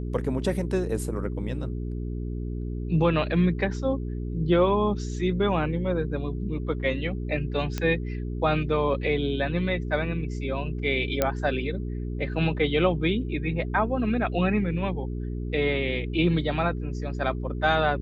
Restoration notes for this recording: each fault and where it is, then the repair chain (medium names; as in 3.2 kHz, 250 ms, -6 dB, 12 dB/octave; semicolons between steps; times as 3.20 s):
hum 60 Hz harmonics 7 -31 dBFS
7.78 s: pop -14 dBFS
11.22 s: pop -8 dBFS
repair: de-click; de-hum 60 Hz, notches 7